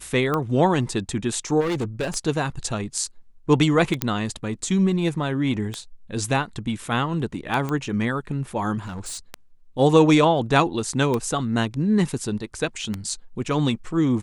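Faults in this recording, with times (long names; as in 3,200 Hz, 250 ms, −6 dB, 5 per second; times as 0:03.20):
scratch tick 33 1/3 rpm −12 dBFS
0:01.60–0:02.17: clipping −21.5 dBFS
0:04.02: click −4 dBFS
0:07.69: click −15 dBFS
0:08.80–0:09.19: clipping −29 dBFS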